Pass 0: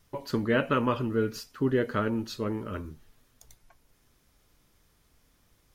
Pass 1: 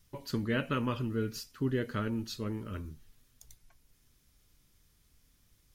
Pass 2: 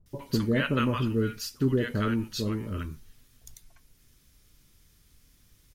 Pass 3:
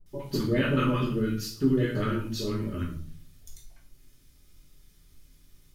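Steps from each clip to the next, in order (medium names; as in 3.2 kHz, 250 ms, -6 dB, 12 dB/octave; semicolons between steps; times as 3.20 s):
peaking EQ 720 Hz -10 dB 2.9 oct
bands offset in time lows, highs 60 ms, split 820 Hz; trim +6.5 dB
reverberation RT60 0.50 s, pre-delay 3 ms, DRR -2.5 dB; trim -5 dB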